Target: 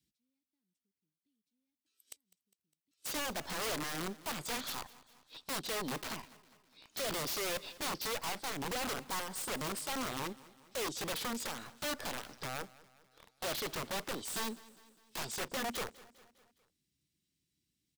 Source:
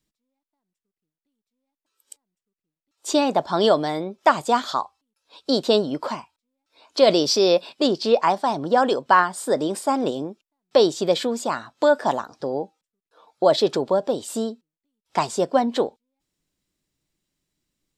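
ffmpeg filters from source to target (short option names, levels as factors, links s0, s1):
-filter_complex "[0:a]highpass=f=53:w=0.5412,highpass=f=53:w=1.3066,bandreject=f=7200:w=13,acrossover=split=380|1800[s0][s1][s2];[s1]acrusher=bits=5:dc=4:mix=0:aa=0.000001[s3];[s0][s3][s2]amix=inputs=3:normalize=0,asoftclip=type=tanh:threshold=0.0944,acompressor=threshold=0.0282:ratio=8,aeval=exprs='(mod(33.5*val(0)+1,2)-1)/33.5':c=same,asplit=2[s4][s5];[s5]aecho=0:1:203|406|609|812:0.0944|0.051|0.0275|0.0149[s6];[s4][s6]amix=inputs=2:normalize=0,volume=0.708"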